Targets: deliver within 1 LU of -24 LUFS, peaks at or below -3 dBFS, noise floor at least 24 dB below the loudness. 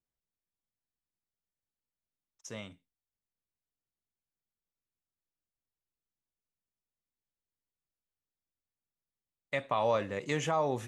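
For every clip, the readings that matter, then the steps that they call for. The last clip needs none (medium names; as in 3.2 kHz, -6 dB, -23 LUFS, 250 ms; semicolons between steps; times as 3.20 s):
loudness -32.0 LUFS; peak level -17.5 dBFS; loudness target -24.0 LUFS
-> trim +8 dB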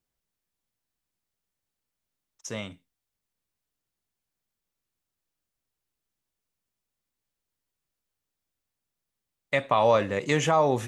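loudness -24.0 LUFS; peak level -9.5 dBFS; noise floor -86 dBFS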